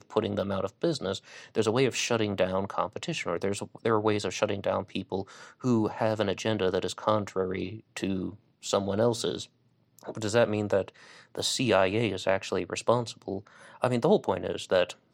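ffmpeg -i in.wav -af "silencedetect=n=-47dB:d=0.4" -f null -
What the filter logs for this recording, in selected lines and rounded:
silence_start: 9.46
silence_end: 9.99 | silence_duration: 0.53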